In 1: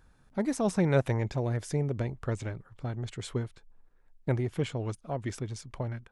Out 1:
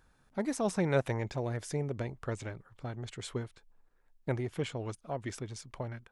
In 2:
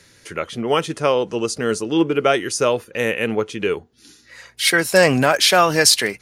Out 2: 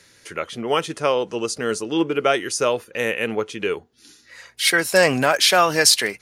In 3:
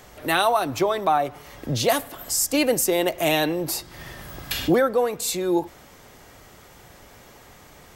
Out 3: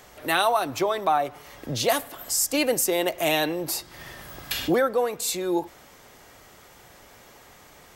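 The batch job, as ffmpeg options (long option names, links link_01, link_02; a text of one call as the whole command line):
ffmpeg -i in.wav -af "lowshelf=frequency=280:gain=-6,volume=-1dB" out.wav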